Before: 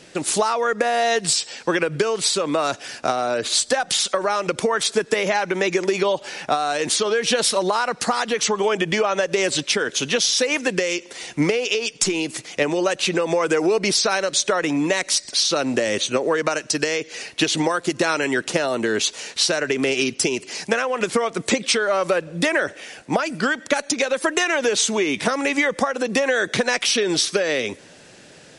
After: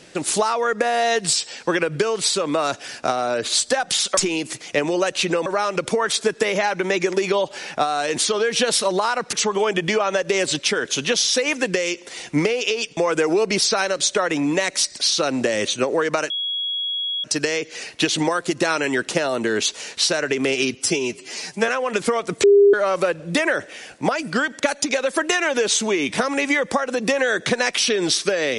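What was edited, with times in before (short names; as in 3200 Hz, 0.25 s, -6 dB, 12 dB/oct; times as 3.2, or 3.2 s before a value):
8.04–8.37 cut
12.01–13.3 move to 4.17
16.63 add tone 3330 Hz -22 dBFS 0.94 s
20.13–20.76 stretch 1.5×
21.51–21.81 bleep 403 Hz -8.5 dBFS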